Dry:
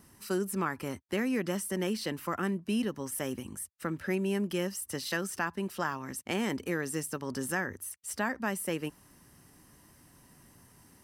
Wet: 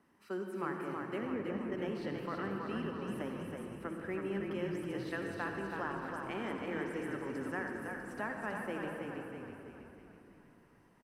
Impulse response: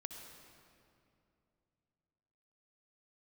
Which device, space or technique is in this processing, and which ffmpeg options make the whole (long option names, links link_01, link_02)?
swimming-pool hall: -filter_complex "[0:a]asettb=1/sr,asplit=3[link_01][link_02][link_03];[link_01]atrim=end=1.184[link_04];[link_02]atrim=start=1.18:end=1.72,asetpts=PTS-STARTPTS,afade=type=in:duration=0.004:curve=qsin,afade=type=out:start_time=0.536:duration=0.004:curve=qsin,lowpass=frequency=1000:poles=1[link_05];[link_03]atrim=start=1.716[link_06];[link_04][link_05]acrossfade=duration=0.004:curve1=hsin:curve2=qsin[link_07];[link_07][link_06]acrossfade=duration=0.004:curve1=qsin:curve2=hsin[link_08];[1:a]atrim=start_sample=2205[link_09];[link_08][link_09]afir=irnorm=-1:irlink=0,acrossover=split=210 3000:gain=0.158 1 0.2[link_10][link_11][link_12];[link_10][link_11][link_12]amix=inputs=3:normalize=0,highshelf=frequency=5500:gain=-6.5,asplit=8[link_13][link_14][link_15][link_16][link_17][link_18][link_19][link_20];[link_14]adelay=324,afreqshift=-33,volume=-4.5dB[link_21];[link_15]adelay=648,afreqshift=-66,volume=-10dB[link_22];[link_16]adelay=972,afreqshift=-99,volume=-15.5dB[link_23];[link_17]adelay=1296,afreqshift=-132,volume=-21dB[link_24];[link_18]adelay=1620,afreqshift=-165,volume=-26.6dB[link_25];[link_19]adelay=1944,afreqshift=-198,volume=-32.1dB[link_26];[link_20]adelay=2268,afreqshift=-231,volume=-37.6dB[link_27];[link_13][link_21][link_22][link_23][link_24][link_25][link_26][link_27]amix=inputs=8:normalize=0,volume=-2dB"